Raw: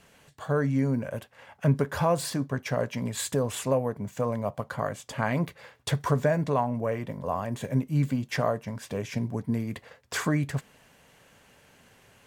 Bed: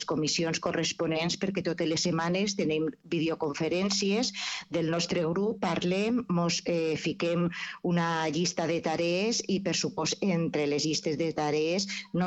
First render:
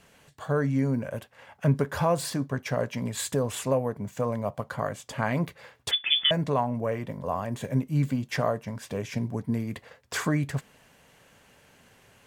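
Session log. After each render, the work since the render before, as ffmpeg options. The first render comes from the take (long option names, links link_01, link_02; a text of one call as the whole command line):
ffmpeg -i in.wav -filter_complex "[0:a]asettb=1/sr,asplit=3[link_01][link_02][link_03];[link_01]atrim=end=5.914[link_04];[link_02]atrim=start=5.91:end=6.31,asetpts=PTS-STARTPTS,afade=type=in:duration=0.004:curve=qsin,afade=type=out:start_time=0.396:duration=0.004:curve=qsin,lowpass=frequency=3100:width_type=q:width=0.5098,lowpass=frequency=3100:width_type=q:width=0.6013,lowpass=frequency=3100:width_type=q:width=0.9,lowpass=frequency=3100:width_type=q:width=2.563,afreqshift=-3600[link_05];[link_03]atrim=start=6.306[link_06];[link_04][link_05]acrossfade=duration=0.004:curve1=hsin:curve2=qsin[link_07];[link_07][link_06]acrossfade=duration=0.004:curve1=qsin:curve2=hsin" out.wav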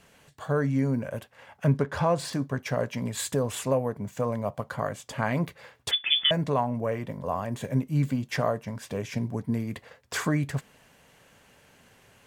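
ffmpeg -i in.wav -filter_complex "[0:a]asettb=1/sr,asplit=3[link_01][link_02][link_03];[link_01]atrim=end=1.774[link_04];[link_02]atrim=start=1.77:end=2.33,asetpts=PTS-STARTPTS,afade=type=in:duration=0.004:curve=qsin,afade=type=out:start_time=0.556:duration=0.004:curve=qsin,adynamicsmooth=sensitivity=7:basefreq=5900[link_05];[link_03]atrim=start=2.326[link_06];[link_04][link_05]acrossfade=duration=0.004:curve1=hsin:curve2=qsin[link_07];[link_07][link_06]acrossfade=duration=0.004:curve1=qsin:curve2=hsin" out.wav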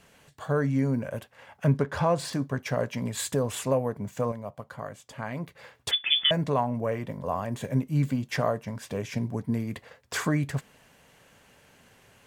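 ffmpeg -i in.wav -filter_complex "[0:a]asplit=3[link_01][link_02][link_03];[link_01]atrim=end=4.322[link_04];[link_02]atrim=start=4.318:end=5.552,asetpts=PTS-STARTPTS,volume=-7.5dB[link_05];[link_03]atrim=start=5.548[link_06];[link_04][link_05]acrossfade=duration=0.004:curve1=hsin:curve2=hsin[link_07];[link_07][link_06]acrossfade=duration=0.004:curve1=hsin:curve2=hsin" out.wav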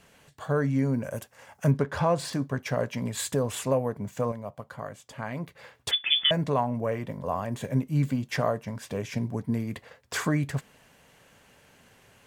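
ffmpeg -i in.wav -filter_complex "[0:a]asettb=1/sr,asplit=3[link_01][link_02][link_03];[link_01]atrim=end=1.034[link_04];[link_02]atrim=start=1.03:end=1.71,asetpts=PTS-STARTPTS,afade=type=in:duration=0.004:curve=qsin,afade=type=out:start_time=0.676:duration=0.004:curve=qsin,highshelf=frequency=4700:width_type=q:width=1.5:gain=7.5[link_05];[link_03]atrim=start=1.706[link_06];[link_04][link_05]acrossfade=duration=0.004:curve1=hsin:curve2=qsin[link_07];[link_07][link_06]acrossfade=duration=0.004:curve1=qsin:curve2=hsin" out.wav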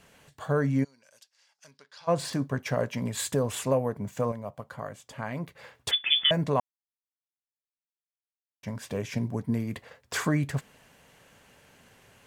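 ffmpeg -i in.wav -filter_complex "[0:a]asplit=3[link_01][link_02][link_03];[link_01]afade=type=out:start_time=0.83:duration=0.02[link_04];[link_02]bandpass=frequency=4700:width_type=q:width=3.2,afade=type=in:start_time=0.83:duration=0.02,afade=type=out:start_time=2.07:duration=0.02[link_05];[link_03]afade=type=in:start_time=2.07:duration=0.02[link_06];[link_04][link_05][link_06]amix=inputs=3:normalize=0,asplit=3[link_07][link_08][link_09];[link_07]atrim=end=6.6,asetpts=PTS-STARTPTS,afade=type=out:start_time=6.596:duration=0.004:curve=hsin[link_10];[link_08]atrim=start=6.6:end=8.63,asetpts=PTS-STARTPTS,volume=0[link_11];[link_09]atrim=start=8.63,asetpts=PTS-STARTPTS,afade=type=in:duration=0.004:curve=hsin[link_12];[link_10][link_11][link_12]concat=n=3:v=0:a=1" out.wav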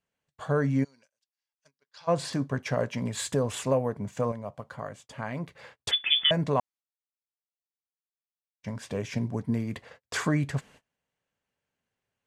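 ffmpeg -i in.wav -af "lowpass=9000,agate=range=-28dB:threshold=-51dB:ratio=16:detection=peak" out.wav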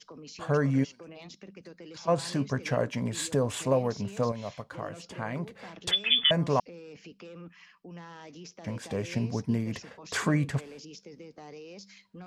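ffmpeg -i in.wav -i bed.wav -filter_complex "[1:a]volume=-18dB[link_01];[0:a][link_01]amix=inputs=2:normalize=0" out.wav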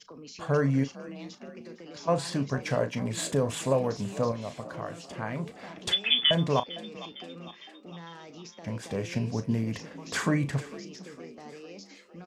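ffmpeg -i in.wav -filter_complex "[0:a]asplit=2[link_01][link_02];[link_02]adelay=36,volume=-11.5dB[link_03];[link_01][link_03]amix=inputs=2:normalize=0,asplit=6[link_04][link_05][link_06][link_07][link_08][link_09];[link_05]adelay=455,afreqshift=48,volume=-18dB[link_10];[link_06]adelay=910,afreqshift=96,volume=-22.7dB[link_11];[link_07]adelay=1365,afreqshift=144,volume=-27.5dB[link_12];[link_08]adelay=1820,afreqshift=192,volume=-32.2dB[link_13];[link_09]adelay=2275,afreqshift=240,volume=-36.9dB[link_14];[link_04][link_10][link_11][link_12][link_13][link_14]amix=inputs=6:normalize=0" out.wav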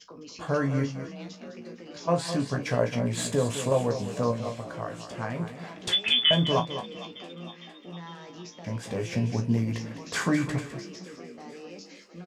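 ffmpeg -i in.wav -filter_complex "[0:a]asplit=2[link_01][link_02];[link_02]adelay=17,volume=-5.5dB[link_03];[link_01][link_03]amix=inputs=2:normalize=0,aecho=1:1:206:0.299" out.wav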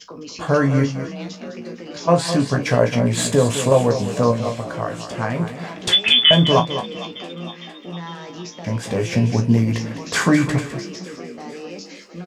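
ffmpeg -i in.wav -af "volume=9.5dB,alimiter=limit=-2dB:level=0:latency=1" out.wav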